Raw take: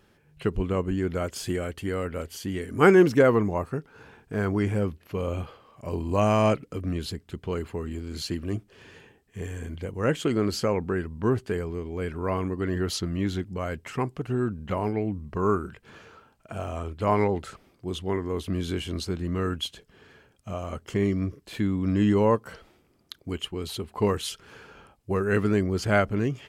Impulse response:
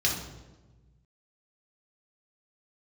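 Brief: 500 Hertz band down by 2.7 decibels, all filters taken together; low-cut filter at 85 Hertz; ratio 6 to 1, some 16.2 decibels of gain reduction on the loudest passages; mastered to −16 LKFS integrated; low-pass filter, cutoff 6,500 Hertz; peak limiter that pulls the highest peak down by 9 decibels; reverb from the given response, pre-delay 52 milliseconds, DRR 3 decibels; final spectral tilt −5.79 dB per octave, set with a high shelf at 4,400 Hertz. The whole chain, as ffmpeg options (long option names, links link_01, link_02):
-filter_complex "[0:a]highpass=85,lowpass=6500,equalizer=frequency=500:width_type=o:gain=-3.5,highshelf=frequency=4400:gain=-3.5,acompressor=threshold=-32dB:ratio=6,alimiter=level_in=4.5dB:limit=-24dB:level=0:latency=1,volume=-4.5dB,asplit=2[link_01][link_02];[1:a]atrim=start_sample=2205,adelay=52[link_03];[link_02][link_03]afir=irnorm=-1:irlink=0,volume=-13dB[link_04];[link_01][link_04]amix=inputs=2:normalize=0,volume=21dB"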